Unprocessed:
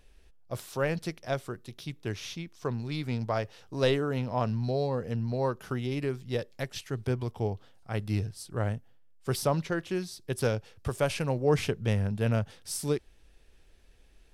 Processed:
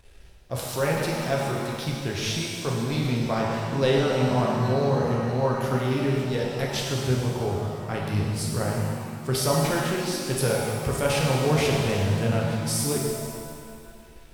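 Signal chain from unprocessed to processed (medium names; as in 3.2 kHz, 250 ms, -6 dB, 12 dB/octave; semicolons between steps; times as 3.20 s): in parallel at -2 dB: compressor with a negative ratio -38 dBFS, ratio -1; on the sum: crossover distortion -53 dBFS; pitch-shifted reverb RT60 2 s, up +7 st, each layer -8 dB, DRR -2.5 dB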